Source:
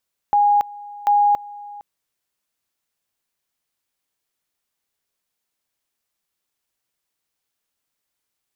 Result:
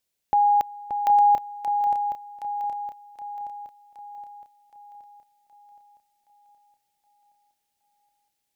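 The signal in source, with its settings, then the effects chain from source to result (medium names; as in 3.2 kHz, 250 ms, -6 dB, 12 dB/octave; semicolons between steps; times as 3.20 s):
two-level tone 822 Hz -12 dBFS, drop 21 dB, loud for 0.28 s, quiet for 0.46 s, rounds 2
peaking EQ 1.2 kHz -8 dB 0.88 oct; shuffle delay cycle 770 ms, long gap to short 3:1, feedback 50%, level -8 dB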